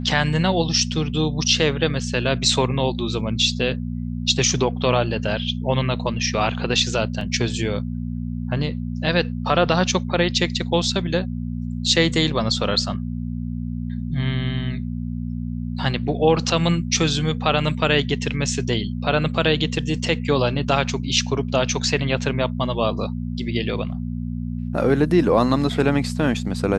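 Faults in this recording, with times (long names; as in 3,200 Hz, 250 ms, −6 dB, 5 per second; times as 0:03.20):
mains hum 60 Hz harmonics 4 −27 dBFS
0:07.21: drop-out 2.5 ms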